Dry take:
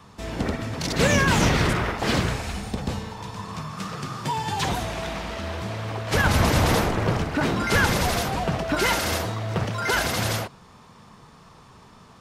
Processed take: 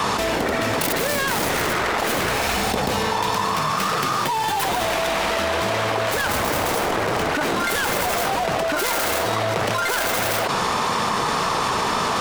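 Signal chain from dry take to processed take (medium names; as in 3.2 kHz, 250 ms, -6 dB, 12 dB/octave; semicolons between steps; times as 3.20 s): tracing distortion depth 0.44 ms; tone controls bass -15 dB, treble -1 dB; level flattener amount 100%; trim -2 dB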